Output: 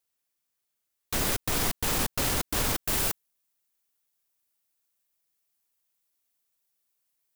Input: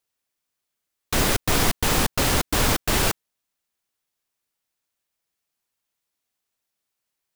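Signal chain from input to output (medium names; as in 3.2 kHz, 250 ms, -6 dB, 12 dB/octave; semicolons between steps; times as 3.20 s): treble shelf 8 kHz +6.5 dB, from 2.83 s +11.5 dB; peak limiter -13 dBFS, peak gain reduction 7.5 dB; trim -4 dB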